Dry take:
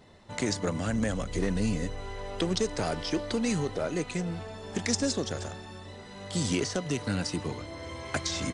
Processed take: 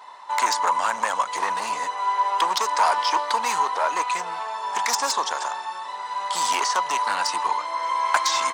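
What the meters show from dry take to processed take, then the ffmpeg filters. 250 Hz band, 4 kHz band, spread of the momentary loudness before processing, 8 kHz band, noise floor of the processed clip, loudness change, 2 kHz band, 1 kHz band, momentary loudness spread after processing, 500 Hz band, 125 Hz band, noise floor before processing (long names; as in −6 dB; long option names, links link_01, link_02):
−15.0 dB, +7.5 dB, 11 LU, +7.0 dB, −35 dBFS, +8.0 dB, +10.0 dB, +21.0 dB, 8 LU, −0.5 dB, below −20 dB, −45 dBFS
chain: -af "asoftclip=type=hard:threshold=-24.5dB,highpass=frequency=970:width_type=q:width=9.7,volume=8dB"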